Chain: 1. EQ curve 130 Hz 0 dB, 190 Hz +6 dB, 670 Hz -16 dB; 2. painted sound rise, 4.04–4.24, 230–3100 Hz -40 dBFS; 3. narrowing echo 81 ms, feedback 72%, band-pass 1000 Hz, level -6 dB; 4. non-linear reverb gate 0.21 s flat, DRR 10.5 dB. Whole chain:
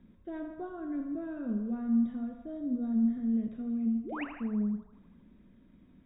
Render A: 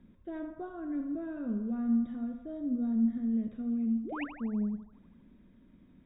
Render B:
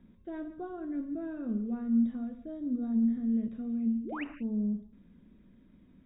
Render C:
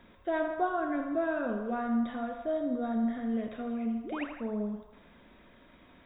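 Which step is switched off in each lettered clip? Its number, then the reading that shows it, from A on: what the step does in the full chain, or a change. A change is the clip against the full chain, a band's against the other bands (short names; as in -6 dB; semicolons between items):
4, echo-to-direct -4.0 dB to -6.0 dB; 3, echo-to-direct -4.0 dB to -10.5 dB; 1, 250 Hz band -13.5 dB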